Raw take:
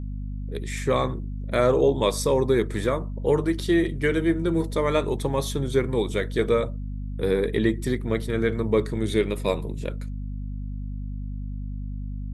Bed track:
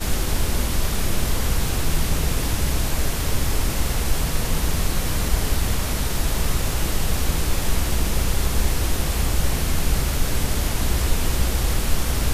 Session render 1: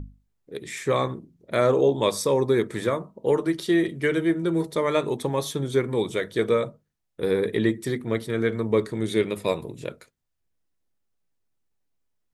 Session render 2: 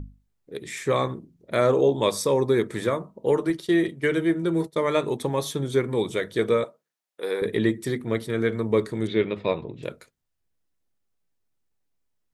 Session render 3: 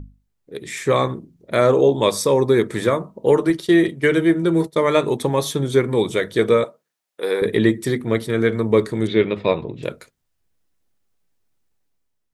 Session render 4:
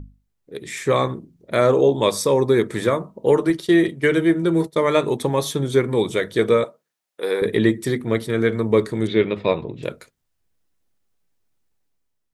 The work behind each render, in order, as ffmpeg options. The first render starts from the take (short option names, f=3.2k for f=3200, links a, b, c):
-af "bandreject=f=50:t=h:w=6,bandreject=f=100:t=h:w=6,bandreject=f=150:t=h:w=6,bandreject=f=200:t=h:w=6,bandreject=f=250:t=h:w=6"
-filter_complex "[0:a]asettb=1/sr,asplit=3[a][b][c];[a]atrim=end=3.504[d];[b]atrim=start=3.5:end=5.2,asetpts=PTS-STARTPTS,afade=t=in:d=0.004:c=qsin,afade=t=out:st=1.696:d=0.004:c=qsin,agate=range=-33dB:threshold=-31dB:ratio=3:release=100:detection=peak[e];[c]atrim=start=5.196[f];[d][e]acrossfade=d=0.004:c1=hsin:c2=qsin[g];[g][f]acrossfade=d=0.004:c1=qsin:c2=hsin,asettb=1/sr,asplit=3[h][i][j];[h]atrim=end=6.644[k];[i]atrim=start=6.64:end=7.42,asetpts=PTS-STARTPTS,afade=t=in:d=0.004:c=qsin,afade=t=out:st=0.776:d=0.004:c=qsin,highpass=510[l];[j]atrim=start=7.416[m];[k][l]acrossfade=d=0.004:c1=hsin:c2=qsin[n];[n][m]acrossfade=d=0.004:c1=qsin:c2=hsin,asettb=1/sr,asplit=3[o][p][q];[o]atrim=end=9.074[r];[p]atrim=start=9.07:end=9.83,asetpts=PTS-STARTPTS,afade=t=in:d=0.004:c=qsin,afade=t=out:st=0.756:d=0.004:c=qsin,lowpass=f=3.8k:w=0.5412,lowpass=f=3.8k:w=1.3066[s];[q]atrim=start=9.826[t];[r][s]acrossfade=d=0.004:c1=hsin:c2=qsin[u];[u][t]acrossfade=d=0.004:c1=qsin:c2=hsin"
-af "dynaudnorm=f=180:g=7:m=7dB"
-af "volume=-1dB"